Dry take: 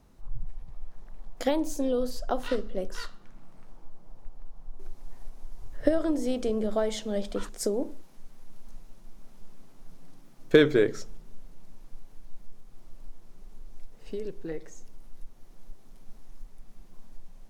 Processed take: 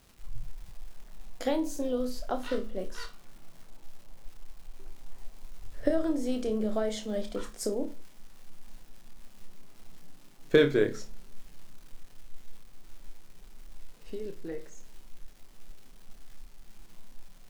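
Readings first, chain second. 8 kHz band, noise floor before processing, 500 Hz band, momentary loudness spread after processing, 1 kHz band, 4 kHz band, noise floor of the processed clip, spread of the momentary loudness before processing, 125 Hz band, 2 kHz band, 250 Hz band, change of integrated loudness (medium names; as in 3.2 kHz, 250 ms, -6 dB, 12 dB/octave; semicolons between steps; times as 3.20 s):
-2.5 dB, -50 dBFS, -2.5 dB, 19 LU, -3.0 dB, -2.5 dB, -52 dBFS, 20 LU, -2.5 dB, -2.5 dB, -2.5 dB, -2.5 dB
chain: crackle 460 per s -44 dBFS; flutter echo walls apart 4.8 m, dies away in 0.21 s; trim -3.5 dB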